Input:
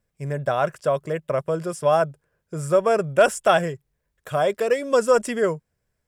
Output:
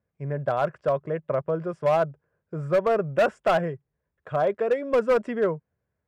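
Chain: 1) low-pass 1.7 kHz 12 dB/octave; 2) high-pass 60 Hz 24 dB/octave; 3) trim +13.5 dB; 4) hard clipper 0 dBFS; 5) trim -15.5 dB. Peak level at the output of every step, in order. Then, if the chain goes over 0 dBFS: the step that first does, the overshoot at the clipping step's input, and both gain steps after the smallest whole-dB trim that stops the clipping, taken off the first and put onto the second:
-6.0 dBFS, -6.0 dBFS, +7.5 dBFS, 0.0 dBFS, -15.5 dBFS; step 3, 7.5 dB; step 3 +5.5 dB, step 5 -7.5 dB

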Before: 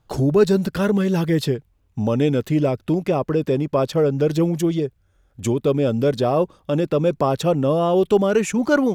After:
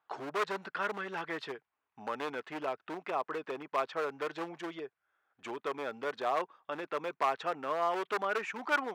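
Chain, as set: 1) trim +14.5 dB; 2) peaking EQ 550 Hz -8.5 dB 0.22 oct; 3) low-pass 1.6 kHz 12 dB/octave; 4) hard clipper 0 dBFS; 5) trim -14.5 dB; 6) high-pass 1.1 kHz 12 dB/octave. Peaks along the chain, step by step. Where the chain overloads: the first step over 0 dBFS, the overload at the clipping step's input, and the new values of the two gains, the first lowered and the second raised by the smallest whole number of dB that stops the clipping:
+9.5 dBFS, +8.5 dBFS, +8.5 dBFS, 0.0 dBFS, -14.5 dBFS, -17.0 dBFS; step 1, 8.5 dB; step 1 +5.5 dB, step 5 -5.5 dB

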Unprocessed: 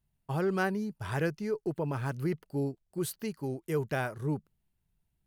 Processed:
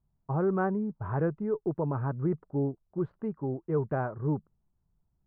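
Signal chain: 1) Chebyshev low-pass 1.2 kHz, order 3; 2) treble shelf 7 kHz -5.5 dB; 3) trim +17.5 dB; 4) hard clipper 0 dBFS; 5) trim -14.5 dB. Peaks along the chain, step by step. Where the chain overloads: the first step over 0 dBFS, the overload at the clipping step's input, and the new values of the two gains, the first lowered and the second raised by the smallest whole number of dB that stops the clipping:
-20.5 dBFS, -20.5 dBFS, -3.0 dBFS, -3.0 dBFS, -17.5 dBFS; nothing clips

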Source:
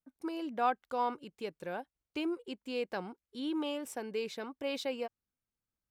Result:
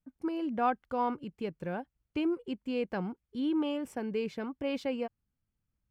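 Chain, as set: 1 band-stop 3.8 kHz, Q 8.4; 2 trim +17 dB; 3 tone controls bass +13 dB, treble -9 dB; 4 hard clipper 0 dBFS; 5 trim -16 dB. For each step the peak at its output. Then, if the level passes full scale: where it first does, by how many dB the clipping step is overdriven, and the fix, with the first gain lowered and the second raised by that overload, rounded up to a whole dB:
-19.0 dBFS, -2.0 dBFS, -2.0 dBFS, -2.0 dBFS, -18.0 dBFS; nothing clips

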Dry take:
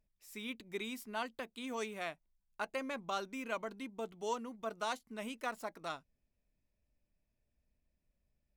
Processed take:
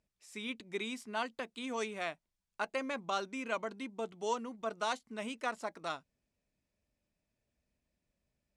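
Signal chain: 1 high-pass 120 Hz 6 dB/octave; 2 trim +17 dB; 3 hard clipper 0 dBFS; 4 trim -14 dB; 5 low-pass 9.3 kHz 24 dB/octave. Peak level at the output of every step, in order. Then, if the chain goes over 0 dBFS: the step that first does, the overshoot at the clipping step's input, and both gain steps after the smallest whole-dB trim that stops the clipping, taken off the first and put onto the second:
-22.5 dBFS, -5.5 dBFS, -5.5 dBFS, -19.5 dBFS, -19.5 dBFS; nothing clips

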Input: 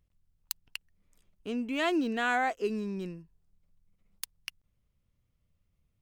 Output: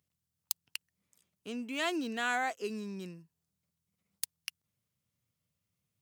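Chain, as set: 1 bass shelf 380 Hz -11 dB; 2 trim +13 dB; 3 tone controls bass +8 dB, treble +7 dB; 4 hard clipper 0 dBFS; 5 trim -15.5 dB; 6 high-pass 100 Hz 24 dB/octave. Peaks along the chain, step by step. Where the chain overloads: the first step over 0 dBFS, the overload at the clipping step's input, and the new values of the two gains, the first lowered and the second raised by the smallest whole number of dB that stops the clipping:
-11.5 dBFS, +1.5 dBFS, +7.5 dBFS, 0.0 dBFS, -15.5 dBFS, -15.0 dBFS; step 2, 7.5 dB; step 2 +5 dB, step 5 -7.5 dB

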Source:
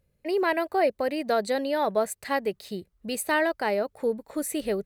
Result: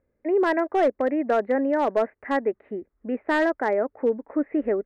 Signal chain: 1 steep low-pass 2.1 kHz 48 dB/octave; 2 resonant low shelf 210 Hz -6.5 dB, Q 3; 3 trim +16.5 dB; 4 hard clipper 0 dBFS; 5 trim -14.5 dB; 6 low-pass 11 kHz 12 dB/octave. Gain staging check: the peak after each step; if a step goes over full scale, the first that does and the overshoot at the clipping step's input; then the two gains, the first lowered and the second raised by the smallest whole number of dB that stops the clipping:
-13.0 dBFS, -11.5 dBFS, +5.0 dBFS, 0.0 dBFS, -14.5 dBFS, -14.0 dBFS; step 3, 5.0 dB; step 3 +11.5 dB, step 5 -9.5 dB

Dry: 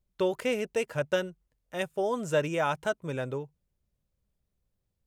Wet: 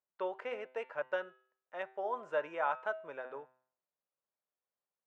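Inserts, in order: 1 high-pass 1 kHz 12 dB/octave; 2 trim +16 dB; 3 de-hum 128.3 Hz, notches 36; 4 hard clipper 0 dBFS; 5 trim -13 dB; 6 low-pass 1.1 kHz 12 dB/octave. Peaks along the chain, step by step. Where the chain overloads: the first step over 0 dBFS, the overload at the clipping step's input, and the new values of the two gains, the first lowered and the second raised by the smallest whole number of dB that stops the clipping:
-18.5 dBFS, -2.5 dBFS, -3.0 dBFS, -3.0 dBFS, -16.0 dBFS, -19.5 dBFS; nothing clips

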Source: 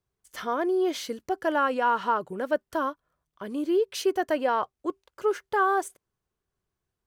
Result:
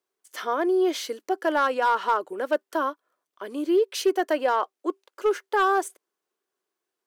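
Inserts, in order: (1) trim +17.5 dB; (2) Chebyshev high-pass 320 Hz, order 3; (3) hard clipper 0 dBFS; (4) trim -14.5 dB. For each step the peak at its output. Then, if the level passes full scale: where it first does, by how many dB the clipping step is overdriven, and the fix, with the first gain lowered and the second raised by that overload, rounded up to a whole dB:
+5.0 dBFS, +4.5 dBFS, 0.0 dBFS, -14.5 dBFS; step 1, 4.5 dB; step 1 +12.5 dB, step 4 -9.5 dB

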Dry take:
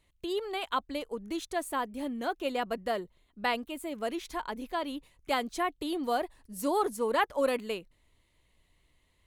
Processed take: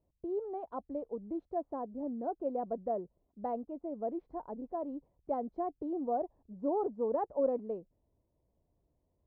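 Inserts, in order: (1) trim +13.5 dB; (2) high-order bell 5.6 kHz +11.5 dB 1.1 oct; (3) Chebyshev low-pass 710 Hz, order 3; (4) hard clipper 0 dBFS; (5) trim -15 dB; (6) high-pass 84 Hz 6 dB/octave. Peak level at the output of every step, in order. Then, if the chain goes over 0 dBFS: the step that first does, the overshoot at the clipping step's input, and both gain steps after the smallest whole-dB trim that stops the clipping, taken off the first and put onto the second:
-1.0 dBFS, -0.5 dBFS, -5.0 dBFS, -5.0 dBFS, -20.0 dBFS, -20.5 dBFS; nothing clips

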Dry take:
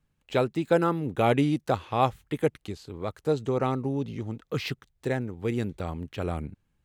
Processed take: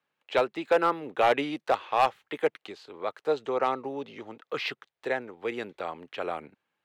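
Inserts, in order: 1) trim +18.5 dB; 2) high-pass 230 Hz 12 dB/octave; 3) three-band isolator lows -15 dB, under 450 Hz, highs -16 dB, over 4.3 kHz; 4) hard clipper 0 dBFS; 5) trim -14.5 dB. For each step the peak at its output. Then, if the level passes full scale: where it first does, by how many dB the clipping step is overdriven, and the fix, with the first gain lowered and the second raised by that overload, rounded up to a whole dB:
+9.5 dBFS, +10.0 dBFS, +8.5 dBFS, 0.0 dBFS, -14.5 dBFS; step 1, 8.5 dB; step 1 +9.5 dB, step 5 -5.5 dB

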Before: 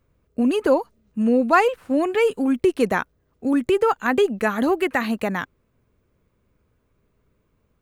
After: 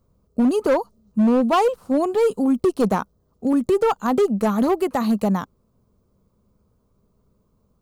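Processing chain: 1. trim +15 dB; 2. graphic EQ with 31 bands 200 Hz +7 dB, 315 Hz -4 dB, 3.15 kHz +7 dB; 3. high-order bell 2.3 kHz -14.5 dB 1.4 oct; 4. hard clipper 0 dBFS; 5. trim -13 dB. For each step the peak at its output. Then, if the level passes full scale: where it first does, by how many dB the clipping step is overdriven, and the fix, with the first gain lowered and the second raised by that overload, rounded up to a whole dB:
+10.5 dBFS, +11.0 dBFS, +8.5 dBFS, 0.0 dBFS, -13.0 dBFS; step 1, 8.5 dB; step 1 +6 dB, step 5 -4 dB

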